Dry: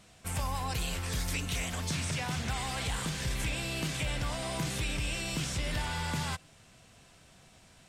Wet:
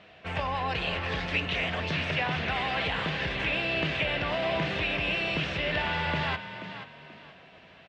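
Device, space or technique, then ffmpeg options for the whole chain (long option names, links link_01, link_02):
frequency-shifting delay pedal into a guitar cabinet: -filter_complex "[0:a]asplit=4[link_01][link_02][link_03][link_04];[link_02]adelay=481,afreqshift=33,volume=-11dB[link_05];[link_03]adelay=962,afreqshift=66,volume=-21.5dB[link_06];[link_04]adelay=1443,afreqshift=99,volume=-31.9dB[link_07];[link_01][link_05][link_06][link_07]amix=inputs=4:normalize=0,highpass=100,equalizer=frequency=120:width_type=q:width=4:gain=-9,equalizer=frequency=230:width_type=q:width=4:gain=-6,equalizer=frequency=430:width_type=q:width=4:gain=4,equalizer=frequency=630:width_type=q:width=4:gain=6,equalizer=frequency=1800:width_type=q:width=4:gain=5,equalizer=frequency=2700:width_type=q:width=4:gain=5,lowpass=frequency=3600:width=0.5412,lowpass=frequency=3600:width=1.3066,volume=5dB"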